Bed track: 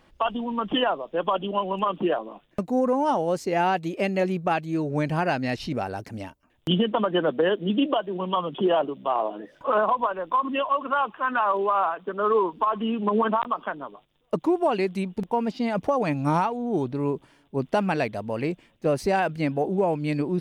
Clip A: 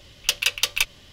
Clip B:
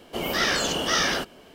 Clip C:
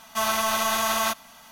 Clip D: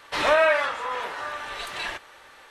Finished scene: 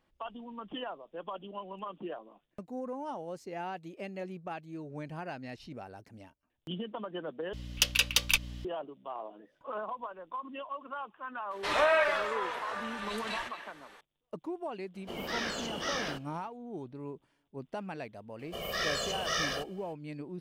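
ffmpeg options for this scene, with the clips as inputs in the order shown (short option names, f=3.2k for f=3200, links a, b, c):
-filter_complex "[2:a]asplit=2[a][b];[0:a]volume=-16dB[c];[1:a]aeval=exprs='val(0)+0.0158*(sin(2*PI*60*n/s)+sin(2*PI*2*60*n/s)/2+sin(2*PI*3*60*n/s)/3+sin(2*PI*4*60*n/s)/4+sin(2*PI*5*60*n/s)/5)':c=same[d];[4:a]asplit=2[e][f];[f]adelay=230,highpass=300,lowpass=3.4k,asoftclip=type=hard:threshold=-18.5dB,volume=-9dB[g];[e][g]amix=inputs=2:normalize=0[h];[a]highshelf=f=6.8k:g=-7[i];[b]aecho=1:1:1.7:0.99[j];[c]asplit=2[k][l];[k]atrim=end=7.534[m];[d]atrim=end=1.12,asetpts=PTS-STARTPTS,volume=-4.5dB[n];[l]atrim=start=8.646[o];[h]atrim=end=2.5,asetpts=PTS-STARTPTS,volume=-6.5dB,afade=t=in:d=0.004:c=hsin,afade=t=out:st=2.496:d=0.004:c=hsin,adelay=11510[p];[i]atrim=end=1.54,asetpts=PTS-STARTPTS,volume=-11dB,afade=t=in:d=0.004:c=hsin,afade=t=out:st=1.536:d=0.004:c=hsin,adelay=14940[q];[j]atrim=end=1.54,asetpts=PTS-STARTPTS,volume=-12.5dB,afade=t=in:d=0.004:c=hsin,afade=t=out:st=1.536:d=0.004:c=hsin,adelay=18390[r];[m][n]acrossfade=d=0.004:c1=hsin:c2=hsin[s];[s][o]acrossfade=d=0.004:c1=hsin:c2=hsin[t];[t][p][q][r]amix=inputs=4:normalize=0"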